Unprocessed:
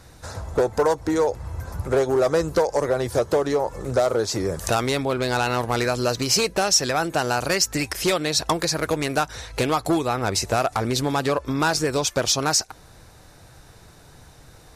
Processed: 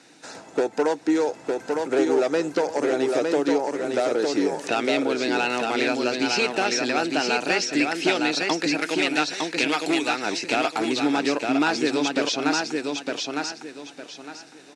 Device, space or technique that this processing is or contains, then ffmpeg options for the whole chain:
television speaker: -filter_complex "[0:a]highpass=f=320:p=1,highpass=f=170:w=0.5412,highpass=f=170:w=1.3066,equalizer=f=290:t=q:w=4:g=9,equalizer=f=560:t=q:w=4:g=-5,equalizer=f=1.1k:t=q:w=4:g=-9,equalizer=f=2.6k:t=q:w=4:g=6,lowpass=f=8.7k:w=0.5412,lowpass=f=8.7k:w=1.3066,acrossover=split=4500[a][b];[b]acompressor=threshold=-40dB:ratio=4:attack=1:release=60[c];[a][c]amix=inputs=2:normalize=0,asettb=1/sr,asplit=3[d][e][f];[d]atrim=end=8.804[g];[e]atrim=start=8.8:end=10.26,asetpts=PTS-STARTPTS,afade=t=in:d=0.004:c=qsin,afade=t=out:st=1.456:d=0.004:c=qsin,tiltshelf=f=1.1k:g=-5[h];[f]atrim=start=10.256[i];[g][h]acrossfade=d=0.004:c1=hsin:c2=qsin[j];[j][i]acrossfade=d=0.004:c1=qsin:c2=hsin,aecho=1:1:908|1816|2724|3632:0.668|0.187|0.0524|0.0147"

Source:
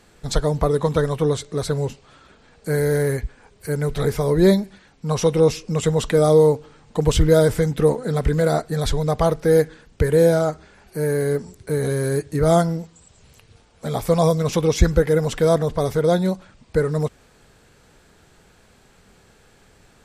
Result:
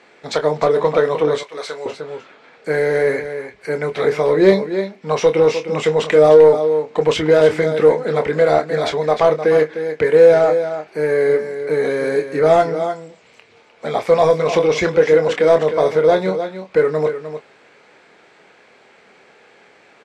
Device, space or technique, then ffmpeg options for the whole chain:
intercom: -filter_complex "[0:a]highpass=480,lowpass=4.7k,equalizer=f=2.2k:t=o:w=0.48:g=8.5,aecho=1:1:304:0.299,asoftclip=type=tanh:threshold=-12dB,tiltshelf=f=810:g=4.5,asplit=2[a][b];[b]adelay=26,volume=-8.5dB[c];[a][c]amix=inputs=2:normalize=0,asettb=1/sr,asplit=3[d][e][f];[d]atrim=end=1.434[g];[e]atrim=start=1.43:end=1.86,asetpts=PTS-STARTPTS,afade=t=in:d=0.004:c=qsin,afade=t=out:st=0.426:d=0.004:c=qsin,highpass=f=1.4k:p=1[h];[f]atrim=start=1.856[i];[g][h]acrossfade=d=0.004:c1=hsin:c2=qsin[j];[j][i]acrossfade=d=0.004:c1=qsin:c2=hsin,volume=7dB"

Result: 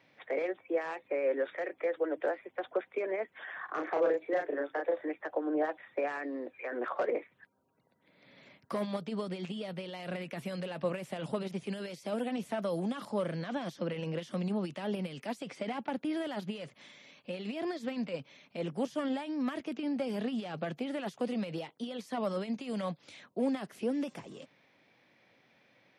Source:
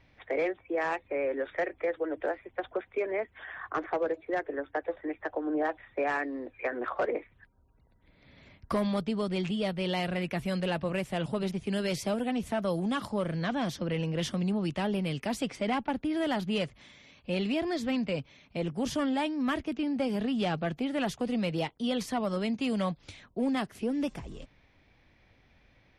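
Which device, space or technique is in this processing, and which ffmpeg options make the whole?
de-esser from a sidechain: -filter_complex "[0:a]asplit=2[a][b];[b]highpass=4.4k,apad=whole_len=1146150[c];[a][c]sidechaincompress=threshold=-52dB:ratio=20:attack=1.8:release=36,equalizer=f=540:t=o:w=0.32:g=3.5,asettb=1/sr,asplit=3[d][e][f];[d]atrim=end=3.654[g];[e]atrim=start=3.65:end=5.09,asetpts=PTS-STARTPTS,afade=t=in:d=0.004:c=qsin,afade=t=out:st=1.436:d=0.004:c=qsin,asplit=2[h][i];[i]adelay=35,volume=-3dB[j];[h][j]amix=inputs=2:normalize=0,atrim=end_sample=63504[k];[f]atrim=start=5.086[l];[g][k]acrossfade=d=0.004:c1=hsin:c2=qsin[m];[m][l]acrossfade=d=0.004:c1=qsin:c2=hsin,highpass=f=140:w=0.5412,highpass=f=140:w=1.3066,lowshelf=f=250:g=-5"

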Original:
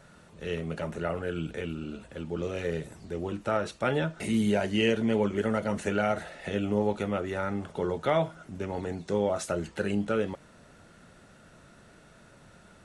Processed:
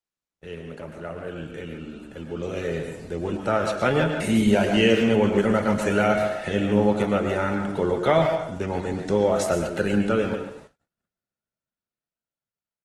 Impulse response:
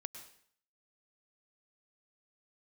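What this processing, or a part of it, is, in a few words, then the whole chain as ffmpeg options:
speakerphone in a meeting room: -filter_complex "[1:a]atrim=start_sample=2205[a];[0:a][a]afir=irnorm=-1:irlink=0,asplit=2[b][c];[c]adelay=140,highpass=300,lowpass=3.4k,asoftclip=type=hard:threshold=-27.5dB,volume=-7dB[d];[b][d]amix=inputs=2:normalize=0,dynaudnorm=f=470:g=11:m=10dB,agate=range=-42dB:threshold=-45dB:ratio=16:detection=peak" -ar 48000 -c:a libopus -b:a 20k

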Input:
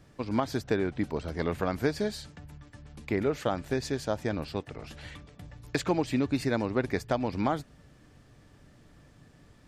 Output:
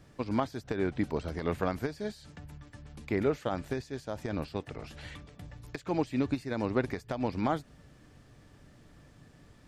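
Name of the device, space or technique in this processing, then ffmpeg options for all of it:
de-esser from a sidechain: -filter_complex "[0:a]asplit=2[a][b];[b]highpass=f=4.8k:w=0.5412,highpass=f=4.8k:w=1.3066,apad=whole_len=426704[c];[a][c]sidechaincompress=threshold=-53dB:ratio=8:attack=2.6:release=96"

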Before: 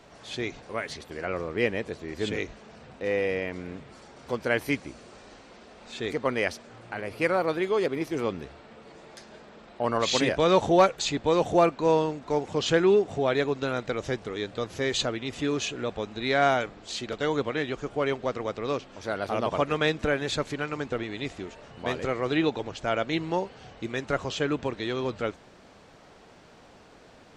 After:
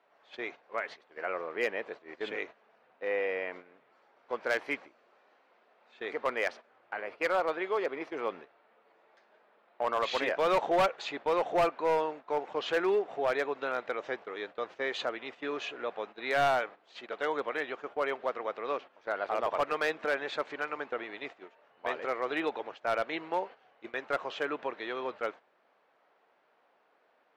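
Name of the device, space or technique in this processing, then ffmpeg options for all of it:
walkie-talkie: -af "highpass=580,lowpass=2.2k,asoftclip=type=hard:threshold=-21.5dB,agate=range=-12dB:threshold=-43dB:ratio=16:detection=peak"

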